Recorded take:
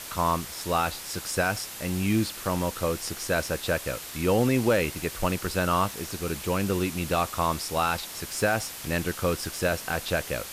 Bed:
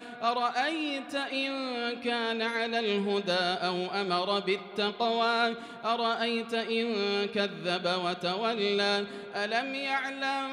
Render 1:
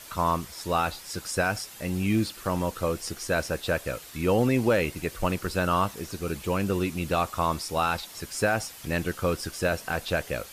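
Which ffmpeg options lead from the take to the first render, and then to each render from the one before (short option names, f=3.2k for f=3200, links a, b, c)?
-af "afftdn=nr=8:nf=-40"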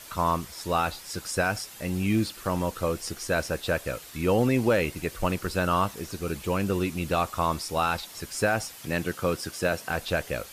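-filter_complex "[0:a]asettb=1/sr,asplit=3[a][b][c];[a]atrim=end=8.764[d];[b]atrim=start=8.76:end=9.9,asetpts=PTS-STARTPTS,afade=t=in:d=0.004:c=qsin,afade=t=out:st=1.136:d=0.004:c=qsin,highpass=97[e];[c]atrim=start=9.896[f];[d][e]acrossfade=d=0.004:c1=hsin:c2=qsin[g];[g][f]acrossfade=d=0.004:c1=qsin:c2=hsin"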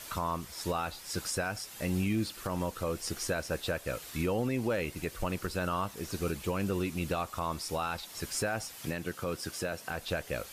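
-af "alimiter=limit=-22dB:level=0:latency=1:release=352"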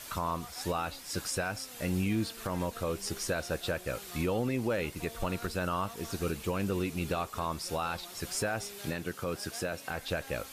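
-filter_complex "[1:a]volume=-21.5dB[a];[0:a][a]amix=inputs=2:normalize=0"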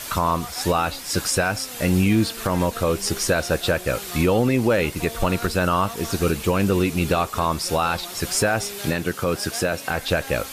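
-af "volume=12dB"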